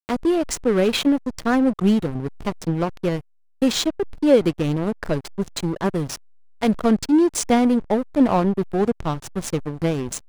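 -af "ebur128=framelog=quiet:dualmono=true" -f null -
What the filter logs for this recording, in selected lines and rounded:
Integrated loudness:
  I:         -18.4 LUFS
  Threshold: -28.5 LUFS
Loudness range:
  LRA:         2.4 LU
  Threshold: -38.5 LUFS
  LRA low:   -19.6 LUFS
  LRA high:  -17.2 LUFS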